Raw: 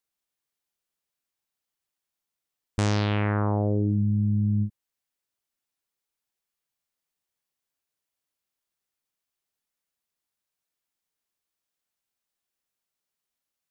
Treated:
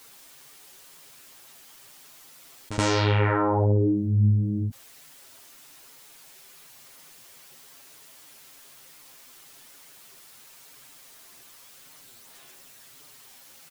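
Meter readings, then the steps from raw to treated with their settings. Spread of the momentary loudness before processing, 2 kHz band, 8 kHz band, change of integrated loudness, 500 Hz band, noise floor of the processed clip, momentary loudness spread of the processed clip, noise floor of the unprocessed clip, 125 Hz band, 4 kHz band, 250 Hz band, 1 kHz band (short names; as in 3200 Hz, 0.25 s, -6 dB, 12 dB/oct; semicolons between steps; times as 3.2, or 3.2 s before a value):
4 LU, +4.5 dB, n/a, +2.0 dB, +5.0 dB, -51 dBFS, 8 LU, under -85 dBFS, +1.5 dB, +5.5 dB, 0.0 dB, +5.5 dB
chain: low shelf 76 Hz -10.5 dB; comb 7.5 ms, depth 50%; in parallel at -2 dB: limiter -19.5 dBFS, peak gain reduction 9 dB; on the sum: chorus voices 4, 0.91 Hz, delay 10 ms, depth 3.5 ms; pre-echo 75 ms -20 dB; fast leveller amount 50%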